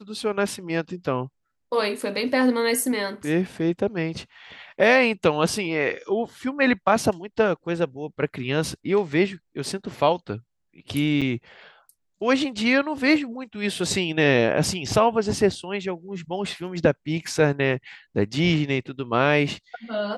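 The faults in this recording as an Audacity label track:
11.210000	11.220000	dropout 6.8 ms

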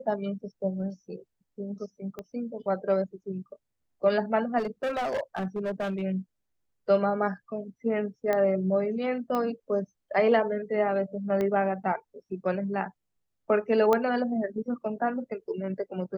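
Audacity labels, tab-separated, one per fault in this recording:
2.190000	2.190000	pop -24 dBFS
4.580000	6.020000	clipped -26 dBFS
8.330000	8.330000	pop -15 dBFS
9.350000	9.350000	pop -18 dBFS
11.410000	11.410000	pop -18 dBFS
13.930000	13.930000	pop -12 dBFS

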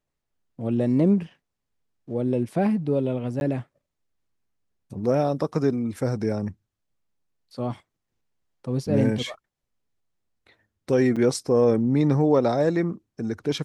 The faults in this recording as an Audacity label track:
3.400000	3.410000	dropout 11 ms
11.160000	11.170000	dropout 5.9 ms

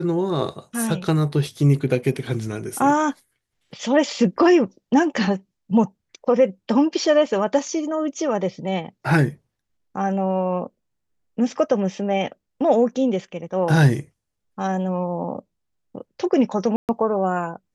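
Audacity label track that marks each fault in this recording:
16.760000	16.890000	dropout 128 ms

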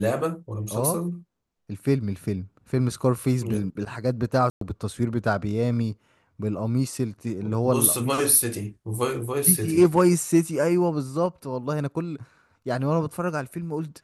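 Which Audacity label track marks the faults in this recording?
4.500000	4.610000	dropout 113 ms

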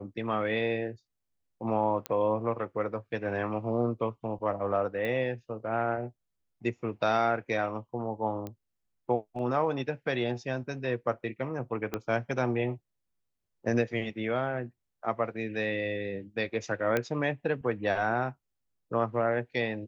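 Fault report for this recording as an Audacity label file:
2.060000	2.060000	pop -16 dBFS
5.050000	5.050000	pop -22 dBFS
8.470000	8.470000	pop -24 dBFS
11.940000	11.940000	pop -17 dBFS
16.970000	16.970000	pop -14 dBFS

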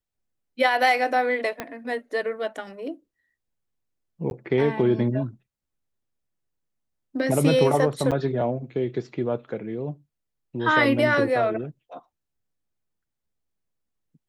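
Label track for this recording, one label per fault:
1.600000	1.600000	pop -14 dBFS
4.300000	4.310000	dropout 11 ms
8.110000	8.120000	dropout 6.8 ms

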